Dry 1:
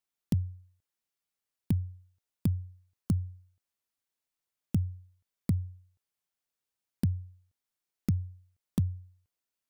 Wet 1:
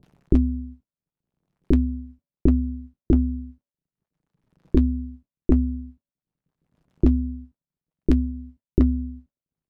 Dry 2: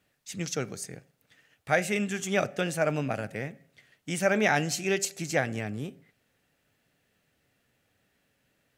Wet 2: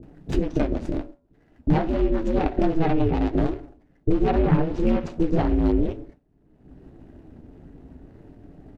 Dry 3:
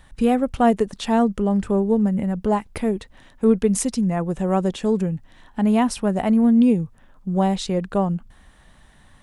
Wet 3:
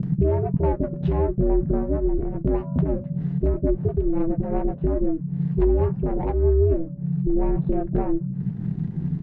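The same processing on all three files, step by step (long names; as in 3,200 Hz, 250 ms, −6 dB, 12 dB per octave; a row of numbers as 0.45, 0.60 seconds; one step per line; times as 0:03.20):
running median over 41 samples
spectral tilt −3 dB per octave
noise gate with hold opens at −46 dBFS
in parallel at +2.5 dB: upward compression, threshold −19 dBFS
on the sum: hum removal 409.7 Hz, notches 3
treble cut that deepens with the level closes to 1,300 Hz, closed at −7 dBFS
downward compressor 3 to 1, threshold −19 dBFS
flanger 0.48 Hz, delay 6.5 ms, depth 5.6 ms, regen −49%
ring modulation 160 Hz
multiband delay without the direct sound lows, highs 30 ms, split 510 Hz
dynamic equaliser 3,300 Hz, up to +4 dB, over −55 dBFS, Q 0.72
loudness normalisation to −24 LKFS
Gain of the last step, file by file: +9.0, +9.0, +4.5 decibels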